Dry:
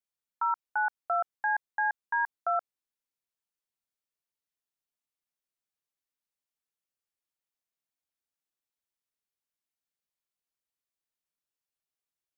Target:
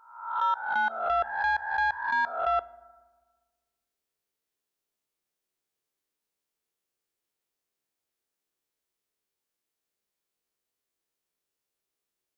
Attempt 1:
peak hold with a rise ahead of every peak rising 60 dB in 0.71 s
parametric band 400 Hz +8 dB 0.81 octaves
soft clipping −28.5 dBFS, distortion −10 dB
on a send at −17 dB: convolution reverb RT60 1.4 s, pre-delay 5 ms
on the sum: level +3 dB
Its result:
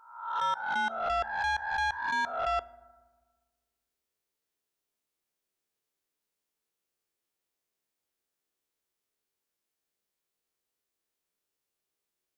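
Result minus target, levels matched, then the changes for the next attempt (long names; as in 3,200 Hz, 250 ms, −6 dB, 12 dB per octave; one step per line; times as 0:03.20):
soft clipping: distortion +9 dB
change: soft clipping −21.5 dBFS, distortion −19 dB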